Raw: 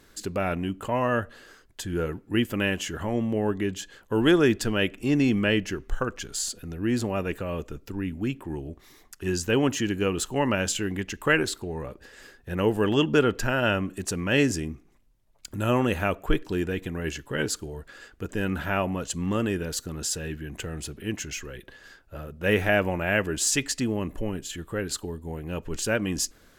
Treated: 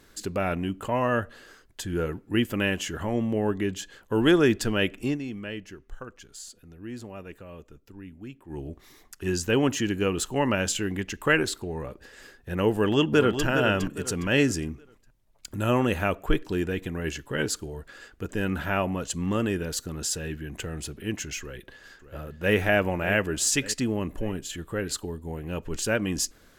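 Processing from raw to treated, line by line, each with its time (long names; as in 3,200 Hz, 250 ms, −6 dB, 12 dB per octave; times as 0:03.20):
0:05.05–0:08.60: duck −12.5 dB, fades 0.13 s
0:12.71–0:13.46: delay throw 410 ms, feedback 35%, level −7.5 dB
0:21.40–0:22.55: delay throw 590 ms, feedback 50%, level −12.5 dB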